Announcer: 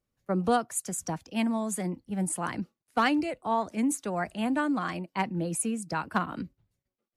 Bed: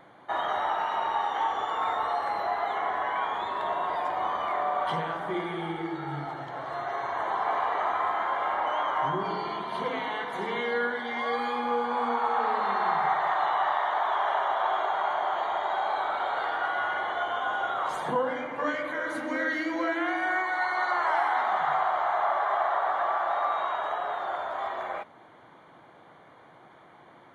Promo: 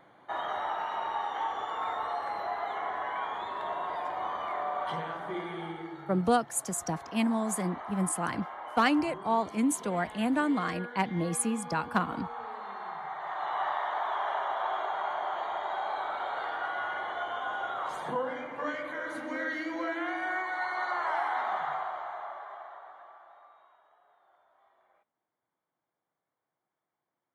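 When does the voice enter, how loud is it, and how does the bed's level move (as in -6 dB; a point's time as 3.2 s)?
5.80 s, 0.0 dB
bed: 5.63 s -5 dB
6.31 s -13.5 dB
13.1 s -13.5 dB
13.61 s -5 dB
21.53 s -5 dB
23.86 s -34.5 dB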